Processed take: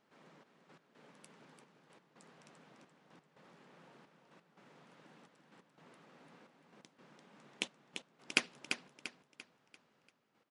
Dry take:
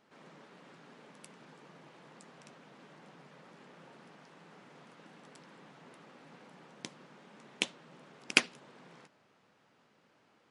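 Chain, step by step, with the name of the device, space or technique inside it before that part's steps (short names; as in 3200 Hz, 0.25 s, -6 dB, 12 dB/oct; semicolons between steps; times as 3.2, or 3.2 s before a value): trance gate with a delay (step gate "xxxxx...x..xxx" 174 bpm -12 dB; feedback echo 0.343 s, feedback 39%, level -7 dB); gain -6 dB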